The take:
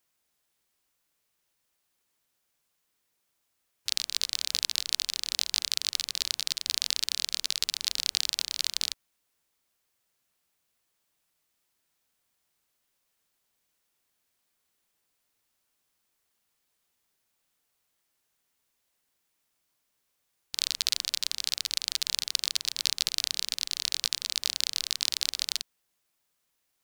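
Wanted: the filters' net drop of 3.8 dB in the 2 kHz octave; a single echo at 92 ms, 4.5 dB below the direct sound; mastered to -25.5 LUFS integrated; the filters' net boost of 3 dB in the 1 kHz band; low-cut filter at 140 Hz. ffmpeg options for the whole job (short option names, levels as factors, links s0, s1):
-af "highpass=140,equalizer=f=1000:t=o:g=6,equalizer=f=2000:t=o:g=-6.5,aecho=1:1:92:0.596,volume=1.33"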